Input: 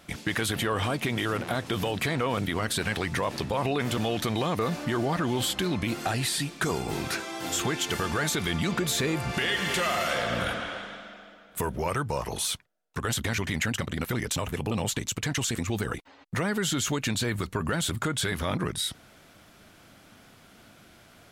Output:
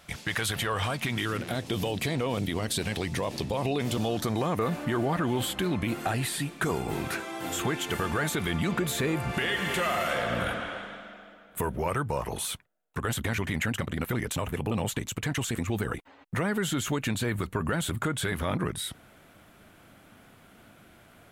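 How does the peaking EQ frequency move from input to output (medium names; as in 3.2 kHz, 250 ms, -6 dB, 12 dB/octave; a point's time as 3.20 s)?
peaking EQ -9 dB 1.1 oct
0.84 s 280 Hz
1.67 s 1.4 kHz
3.86 s 1.4 kHz
4.67 s 5.2 kHz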